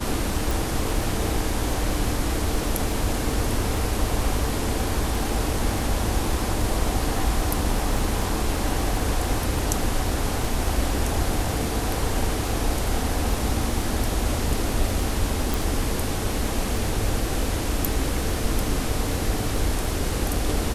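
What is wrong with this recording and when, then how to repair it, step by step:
surface crackle 22 per second −28 dBFS
0:00.51: click
0:15.54: click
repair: click removal

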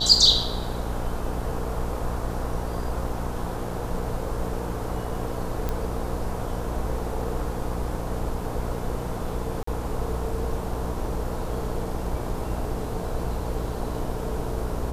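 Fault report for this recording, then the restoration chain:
mains buzz 60 Hz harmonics 18 −32 dBFS
0:05.69: click −14 dBFS
0:09.63–0:09.67: drop-out 44 ms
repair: click removal
hum removal 60 Hz, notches 18
repair the gap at 0:09.63, 44 ms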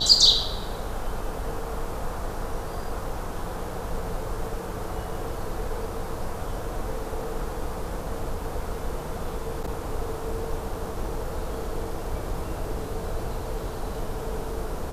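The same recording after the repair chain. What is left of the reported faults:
none of them is left

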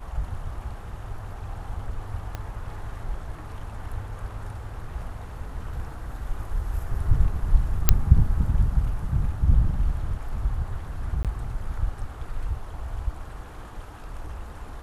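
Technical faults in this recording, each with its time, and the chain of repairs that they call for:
0:02.35: click −18 dBFS
0:07.89: click 0 dBFS
0:11.23–0:11.25: drop-out 17 ms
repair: click removal
repair the gap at 0:11.23, 17 ms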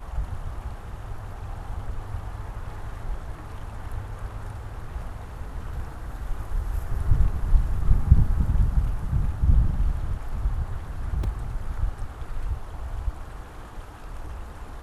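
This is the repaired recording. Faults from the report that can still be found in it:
0:02.35: click

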